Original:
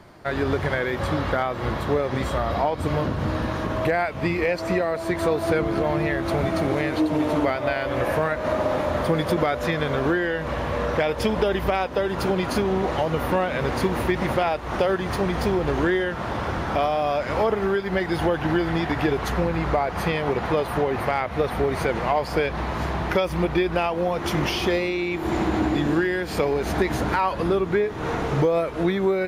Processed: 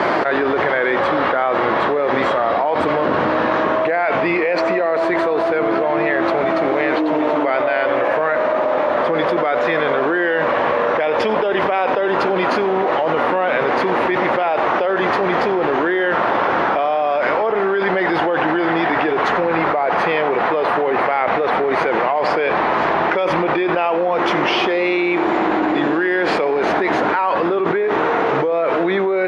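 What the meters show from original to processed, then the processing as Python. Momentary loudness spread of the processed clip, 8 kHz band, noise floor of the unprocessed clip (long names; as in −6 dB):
1 LU, can't be measured, −31 dBFS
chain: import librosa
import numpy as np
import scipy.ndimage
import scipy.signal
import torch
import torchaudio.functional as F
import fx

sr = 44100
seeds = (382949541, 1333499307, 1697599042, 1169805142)

y = fx.bandpass_edges(x, sr, low_hz=390.0, high_hz=2500.0)
y = y + 10.0 ** (-18.0 / 20.0) * np.pad(y, (int(91 * sr / 1000.0), 0))[:len(y)]
y = fx.env_flatten(y, sr, amount_pct=100)
y = y * 10.0 ** (2.0 / 20.0)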